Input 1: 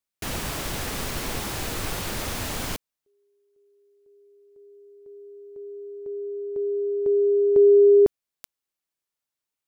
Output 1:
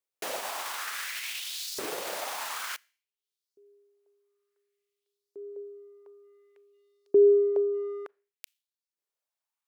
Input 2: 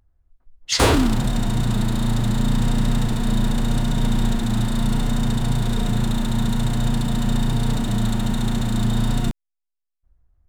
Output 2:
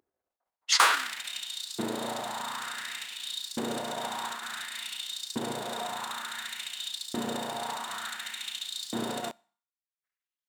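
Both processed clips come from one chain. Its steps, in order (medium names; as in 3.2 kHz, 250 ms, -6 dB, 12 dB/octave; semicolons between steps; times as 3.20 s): Schroeder reverb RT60 0.48 s, combs from 27 ms, DRR 18.5 dB; transient shaper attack +2 dB, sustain -8 dB; LFO high-pass saw up 0.56 Hz 350–5100 Hz; trim -4.5 dB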